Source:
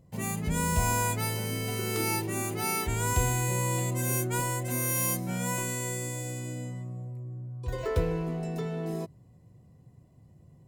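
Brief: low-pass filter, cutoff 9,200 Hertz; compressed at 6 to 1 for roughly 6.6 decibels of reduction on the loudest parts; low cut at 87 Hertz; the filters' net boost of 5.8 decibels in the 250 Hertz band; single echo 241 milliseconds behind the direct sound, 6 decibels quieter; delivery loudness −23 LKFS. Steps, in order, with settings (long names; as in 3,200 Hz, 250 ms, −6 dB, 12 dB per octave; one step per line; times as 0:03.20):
high-pass filter 87 Hz
low-pass filter 9,200 Hz
parametric band 250 Hz +8.5 dB
downward compressor 6 to 1, threshold −29 dBFS
single-tap delay 241 ms −6 dB
level +10 dB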